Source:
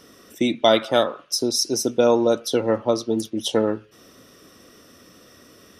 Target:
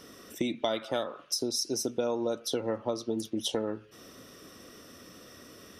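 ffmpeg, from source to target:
-af "acompressor=threshold=0.0398:ratio=4,volume=0.891"

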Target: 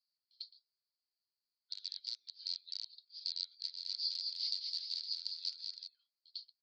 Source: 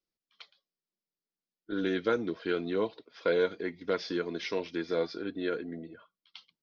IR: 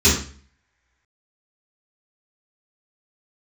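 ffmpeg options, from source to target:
-filter_complex "[0:a]acompressor=threshold=0.0224:ratio=5,aeval=exprs='val(0)+0.00282*(sin(2*PI*60*n/s)+sin(2*PI*2*60*n/s)/2+sin(2*PI*3*60*n/s)/3+sin(2*PI*4*60*n/s)/4+sin(2*PI*5*60*n/s)/5)':c=same,aeval=exprs='(mod(23.7*val(0)+1,2)-1)/23.7':c=same,asuperpass=centerf=4500:order=4:qfactor=6.6,asplit=3[s0][s1][s2];[s0]afade=t=out:st=3.63:d=0.02[s3];[s1]aecho=1:1:210|378|512.4|619.9|705.9:0.631|0.398|0.251|0.158|0.1,afade=t=in:st=3.63:d=0.02,afade=t=out:st=5.86:d=0.02[s4];[s2]afade=t=in:st=5.86:d=0.02[s5];[s3][s4][s5]amix=inputs=3:normalize=0,volume=4.22"

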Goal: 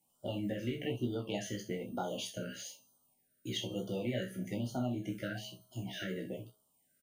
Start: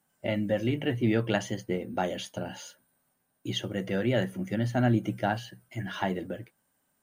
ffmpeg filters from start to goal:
-filter_complex "[0:a]highshelf=f=3700:g=5.5,bandreject=f=211.9:t=h:w=4,bandreject=f=423.8:t=h:w=4,bandreject=f=635.7:t=h:w=4,bandreject=f=847.6:t=h:w=4,bandreject=f=1059.5:t=h:w=4,bandreject=f=1271.4:t=h:w=4,bandreject=f=1483.3:t=h:w=4,bandreject=f=1695.2:t=h:w=4,bandreject=f=1907.1:t=h:w=4,bandreject=f=2119:t=h:w=4,bandreject=f=2330.9:t=h:w=4,bandreject=f=2542.8:t=h:w=4,bandreject=f=2754.7:t=h:w=4,bandreject=f=2966.6:t=h:w=4,bandreject=f=3178.5:t=h:w=4,bandreject=f=3390.4:t=h:w=4,bandreject=f=3602.3:t=h:w=4,bandreject=f=3814.2:t=h:w=4,bandreject=f=4026.1:t=h:w=4,bandreject=f=4238:t=h:w=4,bandreject=f=4449.9:t=h:w=4,bandreject=f=4661.8:t=h:w=4,bandreject=f=4873.7:t=h:w=4,bandreject=f=5085.6:t=h:w=4,bandreject=f=5297.5:t=h:w=4,bandreject=f=5509.4:t=h:w=4,bandreject=f=5721.3:t=h:w=4,bandreject=f=5933.2:t=h:w=4,bandreject=f=6145.1:t=h:w=4,bandreject=f=6357:t=h:w=4,bandreject=f=6568.9:t=h:w=4,bandreject=f=6780.8:t=h:w=4,bandreject=f=6992.7:t=h:w=4,bandreject=f=7204.6:t=h:w=4,bandreject=f=7416.5:t=h:w=4,acompressor=threshold=0.0398:ratio=5,asplit=2[s0][s1];[s1]adelay=16,volume=0.596[s2];[s0][s2]amix=inputs=2:normalize=0,asplit=2[s3][s4];[s4]aecho=0:1:29|63:0.473|0.266[s5];[s3][s5]amix=inputs=2:normalize=0,afftfilt=real='re*(1-between(b*sr/1024,870*pow(2100/870,0.5+0.5*sin(2*PI*1.1*pts/sr))/1.41,870*pow(2100/870,0.5+0.5*sin(2*PI*1.1*pts/sr))*1.41))':imag='im*(1-between(b*sr/1024,870*pow(2100/870,0.5+0.5*sin(2*PI*1.1*pts/sr))/1.41,870*pow(2100/870,0.5+0.5*sin(2*PI*1.1*pts/sr))*1.41))':win_size=1024:overlap=0.75,volume=0.473"

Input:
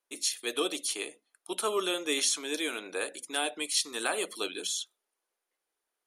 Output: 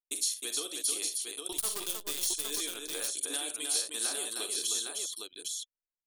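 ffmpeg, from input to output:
-filter_complex "[0:a]asettb=1/sr,asplit=3[s0][s1][s2];[s0]atrim=end=1.524[s3];[s1]atrim=start=1.52:end=2.27,asetpts=PTS-STARTPTS,afade=t=in:d=0.004:c=qsin,afade=t=out:st=0.746:d=0.004:c=qsin,acrusher=bits=5:dc=4:mix=0:aa=0.000001[s4];[s2]atrim=start=2.266[s5];[s3][s4]acrossfade=d=0.004:c1=hsin:c2=qsin[s6];[s6][s5]acrossfade=d=0.004:c1=qsin:c2=hsin,acompressor=threshold=0.00794:ratio=5,aexciter=amount=3.4:drive=4.4:freq=3400,anlmdn=0.1,aecho=1:1:43|63|311|809:0.282|0.237|0.596|0.596,volume=1.12"

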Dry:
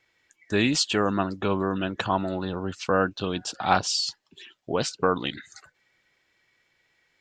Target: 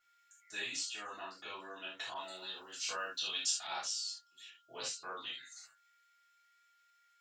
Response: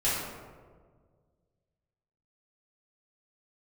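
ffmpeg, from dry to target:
-filter_complex "[0:a]aderivative,acompressor=threshold=0.0158:ratio=6,flanger=delay=8.1:depth=3.6:regen=-62:speed=0.37:shape=triangular,aeval=exprs='val(0)+0.000224*sin(2*PI*1400*n/s)':c=same[s0];[1:a]atrim=start_sample=2205,atrim=end_sample=3969[s1];[s0][s1]afir=irnorm=-1:irlink=0,asettb=1/sr,asplit=3[s2][s3][s4];[s2]atrim=end=2.144[s5];[s3]atrim=start=2.14:end=3.67,asetpts=PTS-STARTPTS,afade=t=in:d=0.004:c=qsin,afade=t=out:st=1.526:d=0.004:c=qsin,adynamicequalizer=threshold=0.00251:dfrequency=1700:dqfactor=0.7:tfrequency=1700:tqfactor=0.7:attack=5:release=100:ratio=0.375:range=4:mode=boostabove:tftype=highshelf[s6];[s4]atrim=start=3.666[s7];[s5][s6]acrossfade=d=0.004:c1=hsin:c2=qsin[s8];[s8][s7]acrossfade=d=0.004:c1=qsin:c2=hsin,volume=0.631"

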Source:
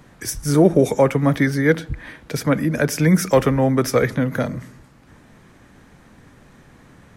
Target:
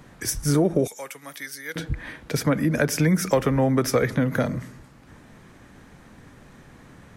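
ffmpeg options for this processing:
-filter_complex "[0:a]asettb=1/sr,asplit=3[s0][s1][s2];[s0]atrim=end=0.874[s3];[s1]atrim=start=0.87:end=1.76,asetpts=PTS-STARTPTS,afade=t=in:d=0.004:c=qsin,afade=t=out:st=0.886:d=0.004:c=qsin,aderivative[s4];[s2]atrim=start=1.756[s5];[s3][s4]acrossfade=d=0.004:c1=hsin:c2=qsin[s6];[s6][s5]acrossfade=d=0.004:c1=qsin:c2=hsin,acompressor=threshold=0.158:ratio=6"

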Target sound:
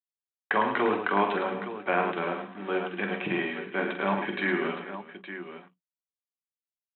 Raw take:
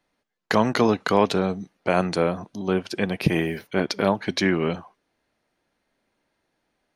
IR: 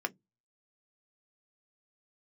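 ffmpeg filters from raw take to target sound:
-filter_complex "[0:a]aresample=8000,acrusher=bits=5:mix=0:aa=0.5,aresample=44100,highpass=82,lowshelf=f=370:g=-9.5,aecho=1:1:46|107|181|398|866:0.447|0.422|0.106|0.119|0.282[s0];[1:a]atrim=start_sample=2205,atrim=end_sample=6174[s1];[s0][s1]afir=irnorm=-1:irlink=0,volume=0.447"

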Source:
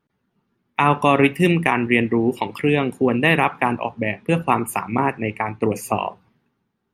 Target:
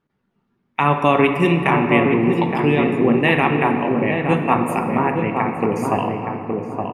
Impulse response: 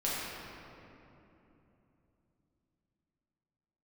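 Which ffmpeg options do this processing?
-filter_complex "[0:a]highshelf=f=7800:g=-12,asplit=2[s0][s1];[s1]adelay=868,lowpass=f=1200:p=1,volume=0.668,asplit=2[s2][s3];[s3]adelay=868,lowpass=f=1200:p=1,volume=0.38,asplit=2[s4][s5];[s5]adelay=868,lowpass=f=1200:p=1,volume=0.38,asplit=2[s6][s7];[s7]adelay=868,lowpass=f=1200:p=1,volume=0.38,asplit=2[s8][s9];[s9]adelay=868,lowpass=f=1200:p=1,volume=0.38[s10];[s0][s2][s4][s6][s8][s10]amix=inputs=6:normalize=0,asplit=2[s11][s12];[1:a]atrim=start_sample=2205[s13];[s12][s13]afir=irnorm=-1:irlink=0,volume=0.316[s14];[s11][s14]amix=inputs=2:normalize=0,volume=0.75"

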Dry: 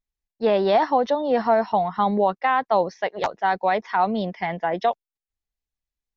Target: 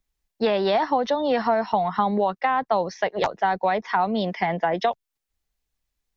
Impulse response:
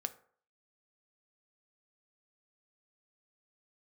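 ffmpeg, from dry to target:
-filter_complex "[0:a]acrossover=split=170|1100[s0][s1][s2];[s0]acompressor=threshold=0.00355:ratio=4[s3];[s1]acompressor=threshold=0.0251:ratio=4[s4];[s2]acompressor=threshold=0.0112:ratio=4[s5];[s3][s4][s5]amix=inputs=3:normalize=0,volume=2.82"

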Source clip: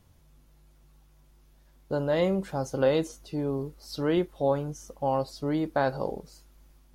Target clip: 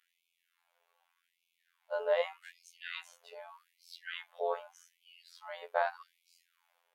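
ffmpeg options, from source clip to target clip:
-af "highshelf=f=3800:t=q:w=1.5:g=-8.5,afftfilt=real='hypot(re,im)*cos(PI*b)':imag='0':win_size=2048:overlap=0.75,afftfilt=real='re*gte(b*sr/1024,410*pow(2200/410,0.5+0.5*sin(2*PI*0.83*pts/sr)))':imag='im*gte(b*sr/1024,410*pow(2200/410,0.5+0.5*sin(2*PI*0.83*pts/sr)))':win_size=1024:overlap=0.75"

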